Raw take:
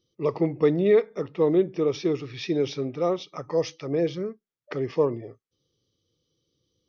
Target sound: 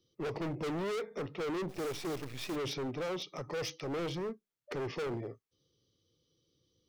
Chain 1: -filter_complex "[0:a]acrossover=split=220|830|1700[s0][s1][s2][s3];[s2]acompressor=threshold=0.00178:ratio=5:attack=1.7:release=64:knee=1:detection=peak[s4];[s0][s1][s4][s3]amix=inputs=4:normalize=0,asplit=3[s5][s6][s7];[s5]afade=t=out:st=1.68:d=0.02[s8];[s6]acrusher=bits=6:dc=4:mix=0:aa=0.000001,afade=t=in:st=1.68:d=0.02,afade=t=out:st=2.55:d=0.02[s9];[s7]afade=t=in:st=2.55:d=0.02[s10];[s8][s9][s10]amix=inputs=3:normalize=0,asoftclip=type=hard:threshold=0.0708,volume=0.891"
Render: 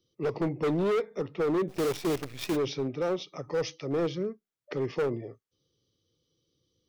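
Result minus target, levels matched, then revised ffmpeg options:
hard clipper: distortion -5 dB
-filter_complex "[0:a]acrossover=split=220|830|1700[s0][s1][s2][s3];[s2]acompressor=threshold=0.00178:ratio=5:attack=1.7:release=64:knee=1:detection=peak[s4];[s0][s1][s4][s3]amix=inputs=4:normalize=0,asplit=3[s5][s6][s7];[s5]afade=t=out:st=1.68:d=0.02[s8];[s6]acrusher=bits=6:dc=4:mix=0:aa=0.000001,afade=t=in:st=1.68:d=0.02,afade=t=out:st=2.55:d=0.02[s9];[s7]afade=t=in:st=2.55:d=0.02[s10];[s8][s9][s10]amix=inputs=3:normalize=0,asoftclip=type=hard:threshold=0.0224,volume=0.891"

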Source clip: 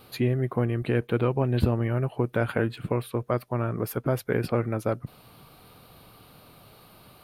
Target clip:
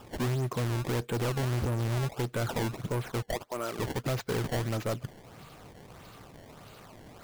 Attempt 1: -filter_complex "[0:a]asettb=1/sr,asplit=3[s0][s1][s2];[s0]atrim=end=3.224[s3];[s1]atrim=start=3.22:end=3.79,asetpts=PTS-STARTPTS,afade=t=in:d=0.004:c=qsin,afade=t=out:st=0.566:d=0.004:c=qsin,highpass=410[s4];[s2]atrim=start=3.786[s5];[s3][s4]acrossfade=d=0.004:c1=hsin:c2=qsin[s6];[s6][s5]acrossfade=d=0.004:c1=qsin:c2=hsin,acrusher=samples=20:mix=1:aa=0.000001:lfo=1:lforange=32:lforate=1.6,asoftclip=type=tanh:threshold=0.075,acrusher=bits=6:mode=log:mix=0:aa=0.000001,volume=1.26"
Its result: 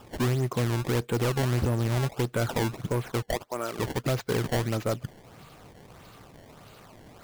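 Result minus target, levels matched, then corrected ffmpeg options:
saturation: distortion -5 dB
-filter_complex "[0:a]asettb=1/sr,asplit=3[s0][s1][s2];[s0]atrim=end=3.224[s3];[s1]atrim=start=3.22:end=3.79,asetpts=PTS-STARTPTS,afade=t=in:d=0.004:c=qsin,afade=t=out:st=0.566:d=0.004:c=qsin,highpass=410[s4];[s2]atrim=start=3.786[s5];[s3][s4]acrossfade=d=0.004:c1=hsin:c2=qsin[s6];[s6][s5]acrossfade=d=0.004:c1=qsin:c2=hsin,acrusher=samples=20:mix=1:aa=0.000001:lfo=1:lforange=32:lforate=1.6,asoftclip=type=tanh:threshold=0.0355,acrusher=bits=6:mode=log:mix=0:aa=0.000001,volume=1.26"

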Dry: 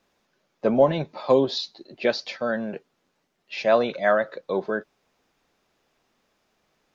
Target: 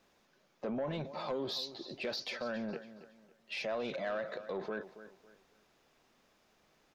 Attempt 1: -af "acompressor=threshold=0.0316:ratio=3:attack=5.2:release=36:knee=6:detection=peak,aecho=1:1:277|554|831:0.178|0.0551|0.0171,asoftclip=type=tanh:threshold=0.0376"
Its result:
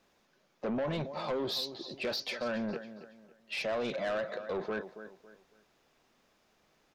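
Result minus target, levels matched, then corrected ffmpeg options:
compression: peak gain reduction -6 dB
-af "acompressor=threshold=0.0112:ratio=3:attack=5.2:release=36:knee=6:detection=peak,aecho=1:1:277|554|831:0.178|0.0551|0.0171,asoftclip=type=tanh:threshold=0.0376"

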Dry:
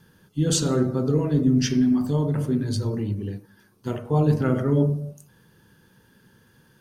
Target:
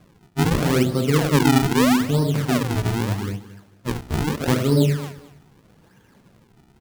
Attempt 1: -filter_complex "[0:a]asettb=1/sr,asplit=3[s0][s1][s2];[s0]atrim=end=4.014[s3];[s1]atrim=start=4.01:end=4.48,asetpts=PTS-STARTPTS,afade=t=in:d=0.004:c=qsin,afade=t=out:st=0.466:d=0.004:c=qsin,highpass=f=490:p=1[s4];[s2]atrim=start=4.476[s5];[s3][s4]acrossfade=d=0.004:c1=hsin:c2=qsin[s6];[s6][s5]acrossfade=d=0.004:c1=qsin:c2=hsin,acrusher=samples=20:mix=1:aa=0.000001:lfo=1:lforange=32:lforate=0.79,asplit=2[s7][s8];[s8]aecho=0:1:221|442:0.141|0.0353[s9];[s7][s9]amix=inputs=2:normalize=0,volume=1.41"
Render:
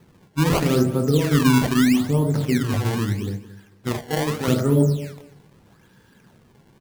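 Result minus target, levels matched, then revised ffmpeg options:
decimation with a swept rate: distortion -7 dB
-filter_complex "[0:a]asettb=1/sr,asplit=3[s0][s1][s2];[s0]atrim=end=4.014[s3];[s1]atrim=start=4.01:end=4.48,asetpts=PTS-STARTPTS,afade=t=in:d=0.004:c=qsin,afade=t=out:st=0.466:d=0.004:c=qsin,highpass=f=490:p=1[s4];[s2]atrim=start=4.476[s5];[s3][s4]acrossfade=d=0.004:c1=hsin:c2=qsin[s6];[s6][s5]acrossfade=d=0.004:c1=qsin:c2=hsin,acrusher=samples=46:mix=1:aa=0.000001:lfo=1:lforange=73.6:lforate=0.79,asplit=2[s7][s8];[s8]aecho=0:1:221|442:0.141|0.0353[s9];[s7][s9]amix=inputs=2:normalize=0,volume=1.41"

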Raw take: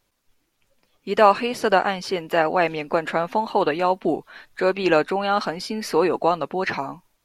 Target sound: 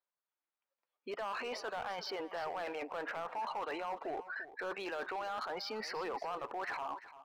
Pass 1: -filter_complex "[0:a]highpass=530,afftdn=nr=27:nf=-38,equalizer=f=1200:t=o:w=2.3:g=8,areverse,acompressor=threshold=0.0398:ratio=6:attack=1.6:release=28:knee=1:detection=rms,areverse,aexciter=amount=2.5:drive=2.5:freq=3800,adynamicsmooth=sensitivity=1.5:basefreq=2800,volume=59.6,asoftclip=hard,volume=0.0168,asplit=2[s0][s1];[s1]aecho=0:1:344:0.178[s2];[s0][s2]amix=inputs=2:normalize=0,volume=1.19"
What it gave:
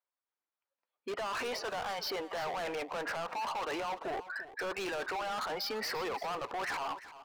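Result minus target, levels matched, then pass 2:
compression: peak gain reduction -8 dB
-filter_complex "[0:a]highpass=530,afftdn=nr=27:nf=-38,equalizer=f=1200:t=o:w=2.3:g=8,areverse,acompressor=threshold=0.0133:ratio=6:attack=1.6:release=28:knee=1:detection=rms,areverse,aexciter=amount=2.5:drive=2.5:freq=3800,adynamicsmooth=sensitivity=1.5:basefreq=2800,volume=59.6,asoftclip=hard,volume=0.0168,asplit=2[s0][s1];[s1]aecho=0:1:344:0.178[s2];[s0][s2]amix=inputs=2:normalize=0,volume=1.19"

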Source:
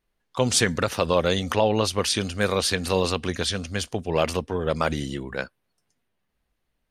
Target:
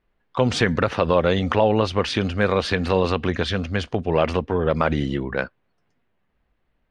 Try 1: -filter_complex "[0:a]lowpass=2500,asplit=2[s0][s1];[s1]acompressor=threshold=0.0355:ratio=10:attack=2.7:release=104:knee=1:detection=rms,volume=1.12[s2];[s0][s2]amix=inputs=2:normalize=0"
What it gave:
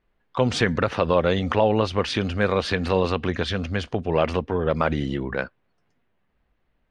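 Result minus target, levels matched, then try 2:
compression: peak gain reduction +6.5 dB
-filter_complex "[0:a]lowpass=2500,asplit=2[s0][s1];[s1]acompressor=threshold=0.0794:ratio=10:attack=2.7:release=104:knee=1:detection=rms,volume=1.12[s2];[s0][s2]amix=inputs=2:normalize=0"

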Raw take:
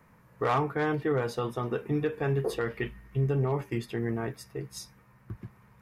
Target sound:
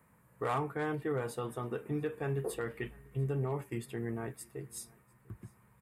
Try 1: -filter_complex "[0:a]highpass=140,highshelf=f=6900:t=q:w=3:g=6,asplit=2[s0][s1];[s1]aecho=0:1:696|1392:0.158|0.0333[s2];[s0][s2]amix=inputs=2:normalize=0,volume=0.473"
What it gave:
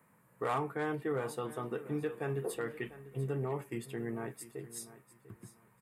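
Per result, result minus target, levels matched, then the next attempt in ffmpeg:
echo-to-direct +10 dB; 125 Hz band -2.5 dB
-filter_complex "[0:a]highpass=140,highshelf=f=6900:t=q:w=3:g=6,asplit=2[s0][s1];[s1]aecho=0:1:696|1392:0.0501|0.0105[s2];[s0][s2]amix=inputs=2:normalize=0,volume=0.473"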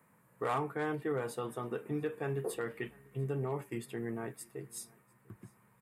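125 Hz band -2.5 dB
-filter_complex "[0:a]highpass=36,highshelf=f=6900:t=q:w=3:g=6,asplit=2[s0][s1];[s1]aecho=0:1:696|1392:0.0501|0.0105[s2];[s0][s2]amix=inputs=2:normalize=0,volume=0.473"

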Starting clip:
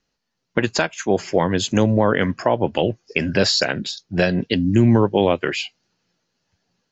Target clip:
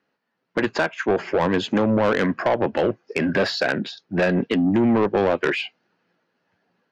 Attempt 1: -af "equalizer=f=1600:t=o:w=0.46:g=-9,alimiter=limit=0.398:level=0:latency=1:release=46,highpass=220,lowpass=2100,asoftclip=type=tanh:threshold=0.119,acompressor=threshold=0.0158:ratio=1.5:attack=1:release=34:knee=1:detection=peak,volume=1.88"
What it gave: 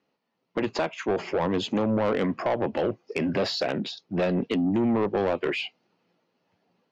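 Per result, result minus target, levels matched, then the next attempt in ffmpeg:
compression: peak gain reduction +5.5 dB; 2 kHz band -4.5 dB
-af "equalizer=f=1600:t=o:w=0.46:g=-9,alimiter=limit=0.398:level=0:latency=1:release=46,highpass=220,lowpass=2100,asoftclip=type=tanh:threshold=0.119,volume=1.88"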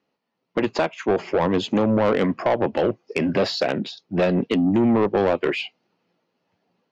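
2 kHz band -5.0 dB
-af "equalizer=f=1600:t=o:w=0.46:g=2.5,alimiter=limit=0.398:level=0:latency=1:release=46,highpass=220,lowpass=2100,asoftclip=type=tanh:threshold=0.119,volume=1.88"

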